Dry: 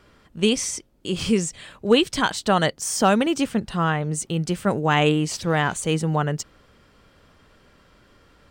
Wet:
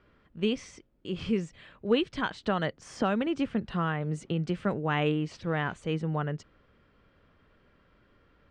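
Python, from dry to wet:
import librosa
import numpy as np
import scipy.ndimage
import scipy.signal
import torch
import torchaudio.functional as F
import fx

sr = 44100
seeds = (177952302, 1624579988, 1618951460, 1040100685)

y = scipy.signal.sosfilt(scipy.signal.butter(2, 2700.0, 'lowpass', fs=sr, output='sos'), x)
y = fx.peak_eq(y, sr, hz=830.0, db=-3.5, octaves=0.73)
y = fx.band_squash(y, sr, depth_pct=70, at=(2.43, 4.74))
y = y * 10.0 ** (-7.5 / 20.0)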